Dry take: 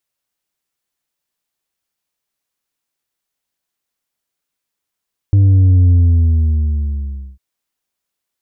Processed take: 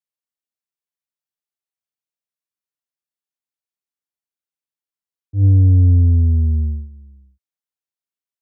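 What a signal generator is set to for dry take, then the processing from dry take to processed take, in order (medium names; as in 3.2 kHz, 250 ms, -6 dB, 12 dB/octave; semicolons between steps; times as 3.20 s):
sub drop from 100 Hz, over 2.05 s, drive 4 dB, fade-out 1.48 s, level -7 dB
gate -17 dBFS, range -16 dB; high-pass 66 Hz; slow attack 121 ms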